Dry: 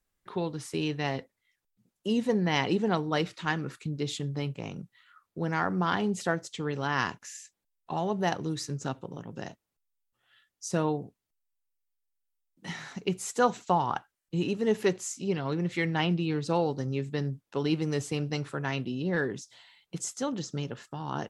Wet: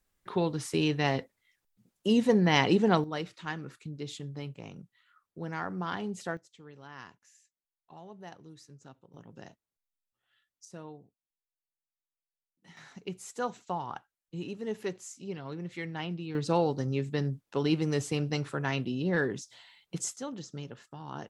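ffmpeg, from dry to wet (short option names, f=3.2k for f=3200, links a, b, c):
-af "asetnsamples=n=441:p=0,asendcmd='3.04 volume volume -7dB;6.37 volume volume -18.5dB;9.14 volume volume -9.5dB;10.65 volume volume -17.5dB;12.77 volume volume -9dB;16.35 volume volume 0.5dB;20.16 volume volume -7dB',volume=3dB"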